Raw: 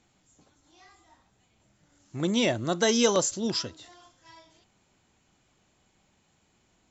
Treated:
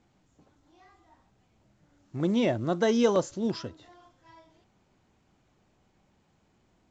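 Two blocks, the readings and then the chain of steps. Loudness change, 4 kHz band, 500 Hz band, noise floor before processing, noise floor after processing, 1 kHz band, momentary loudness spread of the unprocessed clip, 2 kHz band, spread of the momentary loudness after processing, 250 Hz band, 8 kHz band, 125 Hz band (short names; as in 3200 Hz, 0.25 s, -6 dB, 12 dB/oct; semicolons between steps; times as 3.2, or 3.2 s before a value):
-1.5 dB, -9.5 dB, 0.0 dB, -69 dBFS, -69 dBFS, -1.0 dB, 11 LU, -5.0 dB, 15 LU, +1.0 dB, n/a, +1.0 dB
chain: LPF 1100 Hz 6 dB/oct; gain +1 dB; µ-law 128 kbps 16000 Hz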